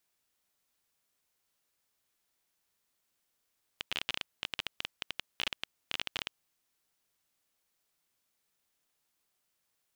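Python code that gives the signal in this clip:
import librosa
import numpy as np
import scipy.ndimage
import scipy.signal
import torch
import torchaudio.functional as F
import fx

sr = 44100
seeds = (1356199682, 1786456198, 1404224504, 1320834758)

y = fx.geiger_clicks(sr, seeds[0], length_s=2.51, per_s=18.0, level_db=-15.5)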